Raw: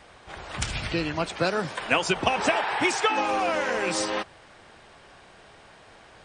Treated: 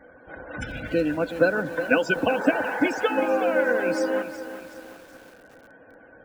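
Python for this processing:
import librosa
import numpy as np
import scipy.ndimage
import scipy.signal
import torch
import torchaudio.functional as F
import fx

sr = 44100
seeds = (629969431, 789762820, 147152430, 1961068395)

y = fx.small_body(x, sr, hz=(280.0, 500.0, 1500.0), ring_ms=45, db=16)
y = fx.spec_topn(y, sr, count=64)
y = fx.echo_crushed(y, sr, ms=372, feedback_pct=55, bits=6, wet_db=-11.0)
y = y * 10.0 ** (-5.5 / 20.0)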